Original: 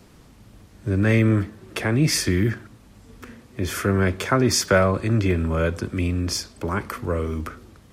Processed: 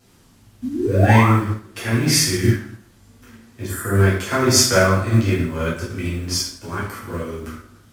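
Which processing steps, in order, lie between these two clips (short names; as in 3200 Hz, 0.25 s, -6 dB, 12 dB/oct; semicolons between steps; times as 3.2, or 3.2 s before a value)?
G.711 law mismatch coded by mu; spectral gain 3.67–3.93, 2000–7000 Hz -18 dB; high shelf 2700 Hz +8 dB; painted sound rise, 0.62–1.29, 230–1400 Hz -21 dBFS; wow and flutter 23 cents; plate-style reverb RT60 0.83 s, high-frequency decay 0.75×, DRR -7.5 dB; upward expander 1.5:1, over -28 dBFS; gain -5.5 dB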